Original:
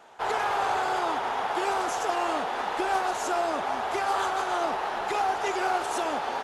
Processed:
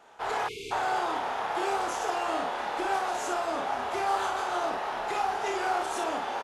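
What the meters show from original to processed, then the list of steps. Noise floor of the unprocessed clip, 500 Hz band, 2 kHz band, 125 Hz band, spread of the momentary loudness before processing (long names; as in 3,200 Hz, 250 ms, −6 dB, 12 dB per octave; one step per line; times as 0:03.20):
−32 dBFS, −2.5 dB, −2.5 dB, can't be measured, 3 LU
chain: ambience of single reflections 28 ms −6 dB, 56 ms −5.5 dB
time-frequency box erased 0:00.48–0:00.71, 490–2,100 Hz
level −4 dB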